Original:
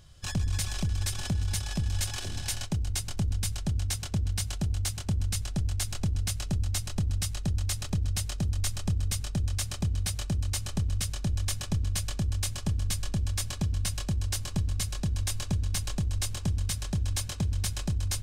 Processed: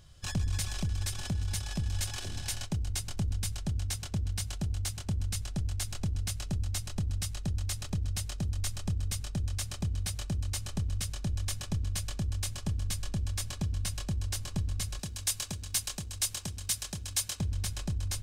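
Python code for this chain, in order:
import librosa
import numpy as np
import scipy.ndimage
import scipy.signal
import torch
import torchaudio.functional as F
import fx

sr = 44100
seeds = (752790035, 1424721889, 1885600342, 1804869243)

y = fx.rider(x, sr, range_db=10, speed_s=2.0)
y = fx.tilt_eq(y, sr, slope=2.5, at=(14.99, 17.4))
y = F.gain(torch.from_numpy(y), -3.5).numpy()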